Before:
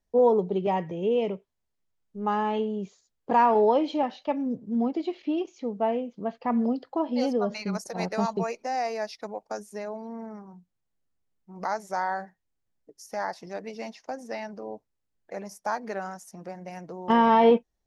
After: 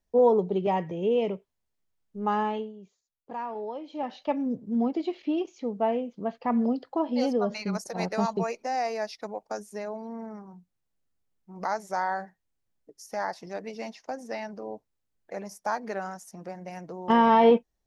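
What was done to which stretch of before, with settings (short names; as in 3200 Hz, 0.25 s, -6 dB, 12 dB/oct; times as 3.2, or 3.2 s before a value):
2.42–4.21 dip -14.5 dB, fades 0.31 s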